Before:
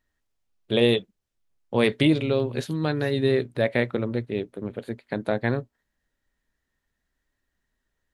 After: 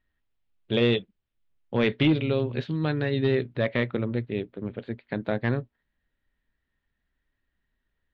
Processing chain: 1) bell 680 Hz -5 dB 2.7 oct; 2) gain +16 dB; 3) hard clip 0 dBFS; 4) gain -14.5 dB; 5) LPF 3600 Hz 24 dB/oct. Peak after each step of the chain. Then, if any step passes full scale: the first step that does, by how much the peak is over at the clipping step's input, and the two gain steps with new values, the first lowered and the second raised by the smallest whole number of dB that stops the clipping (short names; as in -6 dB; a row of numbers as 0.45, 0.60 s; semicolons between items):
-9.5, +6.5, 0.0, -14.5, -13.0 dBFS; step 2, 6.5 dB; step 2 +9 dB, step 4 -7.5 dB